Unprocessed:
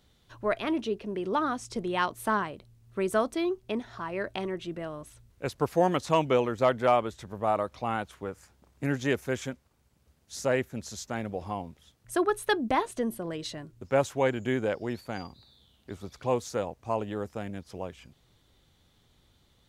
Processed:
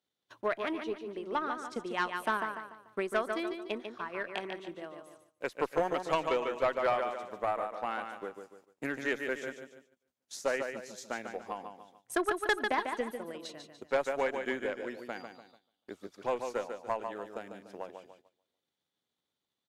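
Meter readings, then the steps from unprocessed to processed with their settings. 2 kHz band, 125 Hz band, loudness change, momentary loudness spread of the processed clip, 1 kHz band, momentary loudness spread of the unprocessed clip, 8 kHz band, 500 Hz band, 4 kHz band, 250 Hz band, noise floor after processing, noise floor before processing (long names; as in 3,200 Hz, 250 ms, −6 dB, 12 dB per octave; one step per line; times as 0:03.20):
0.0 dB, −17.0 dB, −4.5 dB, 15 LU, −4.0 dB, 15 LU, −6.5 dB, −5.0 dB, −4.0 dB, −8.5 dB, below −85 dBFS, −66 dBFS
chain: transient designer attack +8 dB, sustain −3 dB
high-pass filter 270 Hz 12 dB per octave
on a send: repeating echo 146 ms, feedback 41%, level −7 dB
on the sum: dynamic equaliser 1,800 Hz, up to +6 dB, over −42 dBFS, Q 1.4
tube saturation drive 12 dB, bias 0.25
noise gate −51 dBFS, range −12 dB
level −8 dB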